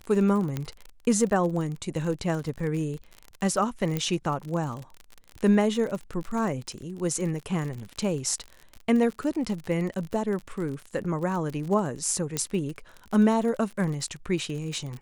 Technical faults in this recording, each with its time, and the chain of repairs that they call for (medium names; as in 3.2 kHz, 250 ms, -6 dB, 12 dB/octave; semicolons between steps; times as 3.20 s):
crackle 46 per s -32 dBFS
0.57 s: pop -16 dBFS
3.97 s: pop -14 dBFS
12.37 s: pop -12 dBFS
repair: de-click